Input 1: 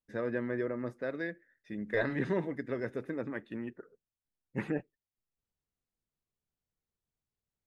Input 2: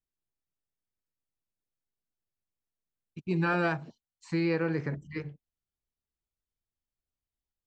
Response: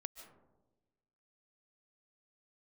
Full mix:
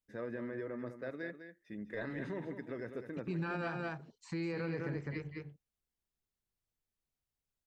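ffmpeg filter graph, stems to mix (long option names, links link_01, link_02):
-filter_complex "[0:a]alimiter=level_in=2dB:limit=-24dB:level=0:latency=1:release=39,volume=-2dB,volume=-5.5dB,asplit=2[link_01][link_02];[link_02]volume=-9.5dB[link_03];[1:a]volume=-3.5dB,asplit=3[link_04][link_05][link_06];[link_05]volume=-5.5dB[link_07];[link_06]apad=whole_len=338172[link_08];[link_01][link_08]sidechaincompress=threshold=-34dB:ratio=8:attack=16:release=390[link_09];[link_03][link_07]amix=inputs=2:normalize=0,aecho=0:1:203:1[link_10];[link_09][link_04][link_10]amix=inputs=3:normalize=0,alimiter=level_in=5dB:limit=-24dB:level=0:latency=1:release=114,volume=-5dB"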